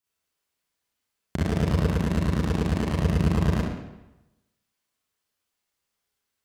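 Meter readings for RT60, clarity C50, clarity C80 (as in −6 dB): 1.0 s, −3.5 dB, 2.5 dB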